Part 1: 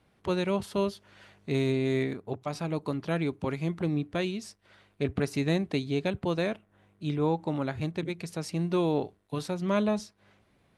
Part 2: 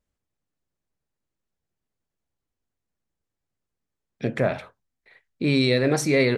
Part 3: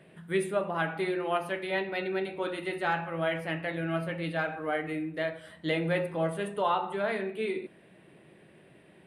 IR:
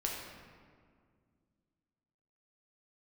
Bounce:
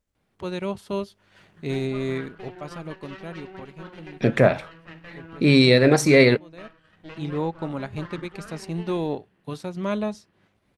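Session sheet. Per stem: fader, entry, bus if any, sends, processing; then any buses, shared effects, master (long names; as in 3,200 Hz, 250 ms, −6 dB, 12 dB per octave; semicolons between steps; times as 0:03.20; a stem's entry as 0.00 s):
−5.5 dB, 0.15 s, no send, automatic ducking −15 dB, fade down 2.00 s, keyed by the second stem
+2.0 dB, 0.00 s, no send, no processing
−9.5 dB, 1.40 s, no send, lower of the sound and its delayed copy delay 0.66 ms; Bessel low-pass filter 3,500 Hz, order 2; downward compressor 3 to 1, threshold −35 dBFS, peak gain reduction 8 dB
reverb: not used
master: automatic gain control gain up to 6 dB; transient designer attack −1 dB, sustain −5 dB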